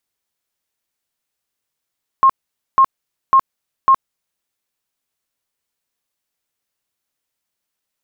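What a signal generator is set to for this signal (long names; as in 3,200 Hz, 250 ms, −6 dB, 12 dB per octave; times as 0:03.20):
tone bursts 1,070 Hz, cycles 70, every 0.55 s, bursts 4, −6.5 dBFS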